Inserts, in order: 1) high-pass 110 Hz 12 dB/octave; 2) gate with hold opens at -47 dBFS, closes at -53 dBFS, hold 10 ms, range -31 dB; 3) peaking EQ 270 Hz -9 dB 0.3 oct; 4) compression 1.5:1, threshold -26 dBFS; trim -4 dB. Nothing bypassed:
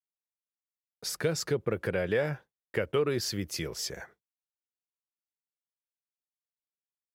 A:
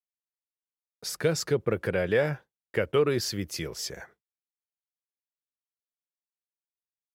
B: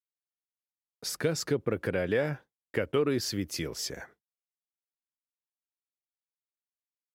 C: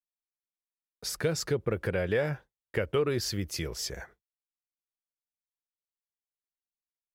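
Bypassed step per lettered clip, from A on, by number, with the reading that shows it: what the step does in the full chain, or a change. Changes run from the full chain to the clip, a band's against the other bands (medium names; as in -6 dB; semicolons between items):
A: 4, loudness change +3.0 LU; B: 3, 250 Hz band +3.0 dB; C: 1, 125 Hz band +2.0 dB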